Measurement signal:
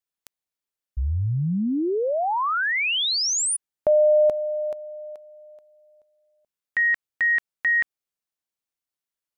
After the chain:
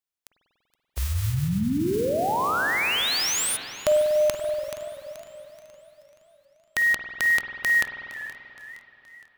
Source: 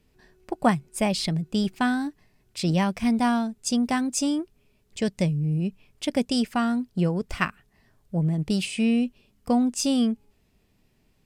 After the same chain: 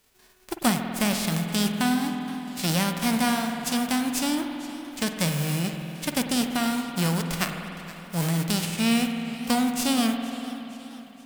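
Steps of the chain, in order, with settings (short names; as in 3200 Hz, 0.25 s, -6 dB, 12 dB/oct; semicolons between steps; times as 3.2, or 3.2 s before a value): spectral whitening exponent 0.3; spring tank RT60 3.2 s, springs 48 ms, chirp 45 ms, DRR 4.5 dB; warbling echo 0.468 s, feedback 50%, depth 151 cents, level -17.5 dB; gain -2 dB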